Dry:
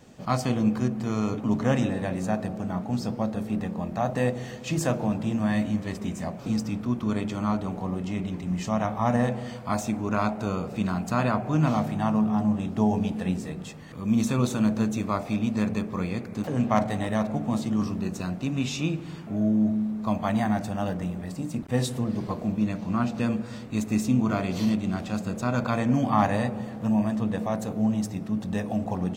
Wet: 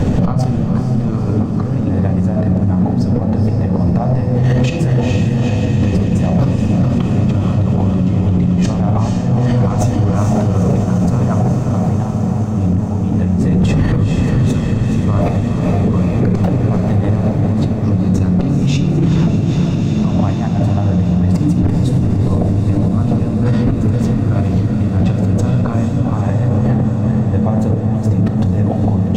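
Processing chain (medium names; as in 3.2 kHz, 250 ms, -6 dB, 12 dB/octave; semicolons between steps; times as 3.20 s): tilt EQ -3.5 dB/octave; compressor with a negative ratio -34 dBFS, ratio -1; peaking EQ 97 Hz +7 dB 0.25 oct; echo that smears into a reverb 460 ms, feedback 77%, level -8.5 dB; reverberation RT60 0.70 s, pre-delay 7 ms, DRR 9.5 dB; loudness maximiser +23 dB; trim -5 dB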